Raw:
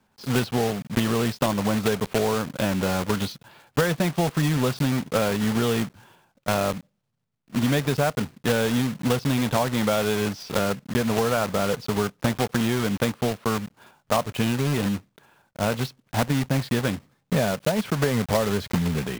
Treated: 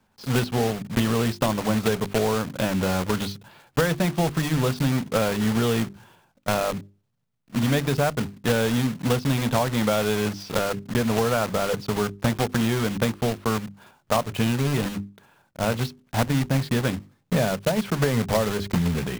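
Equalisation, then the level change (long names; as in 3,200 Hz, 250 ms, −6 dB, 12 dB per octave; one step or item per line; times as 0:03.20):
low-shelf EQ 110 Hz +5 dB
mains-hum notches 50/100/150/200/250/300/350/400 Hz
0.0 dB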